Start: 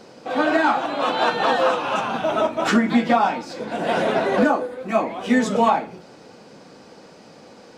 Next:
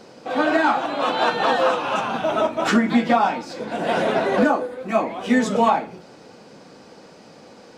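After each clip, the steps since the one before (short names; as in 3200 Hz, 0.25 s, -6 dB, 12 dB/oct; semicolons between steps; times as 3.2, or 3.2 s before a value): nothing audible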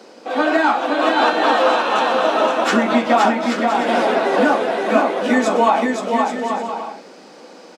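HPF 230 Hz 24 dB/oct; on a send: bouncing-ball echo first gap 0.52 s, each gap 0.6×, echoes 5; on the sum: gain +2.5 dB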